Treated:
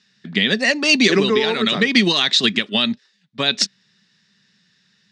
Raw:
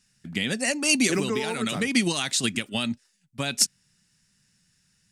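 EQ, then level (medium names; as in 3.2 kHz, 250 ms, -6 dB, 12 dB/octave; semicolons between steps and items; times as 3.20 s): cabinet simulation 160–4900 Hz, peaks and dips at 200 Hz +7 dB, 410 Hz +8 dB, 620 Hz +3 dB, 1.1 kHz +5 dB, 1.8 kHz +7 dB, 3.7 kHz +9 dB; treble shelf 3.8 kHz +6.5 dB; +4.0 dB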